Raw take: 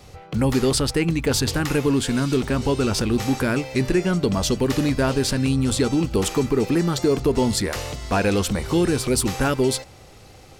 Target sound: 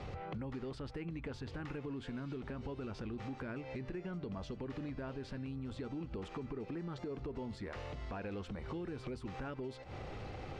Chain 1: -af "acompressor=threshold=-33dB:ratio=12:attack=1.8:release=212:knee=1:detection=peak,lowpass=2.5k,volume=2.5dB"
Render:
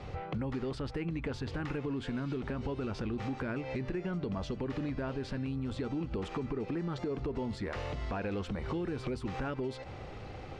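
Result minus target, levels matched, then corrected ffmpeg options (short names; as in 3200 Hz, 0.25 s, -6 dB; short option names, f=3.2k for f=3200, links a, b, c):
compressor: peak gain reduction -7 dB
-af "acompressor=threshold=-40.5dB:ratio=12:attack=1.8:release=212:knee=1:detection=peak,lowpass=2.5k,volume=2.5dB"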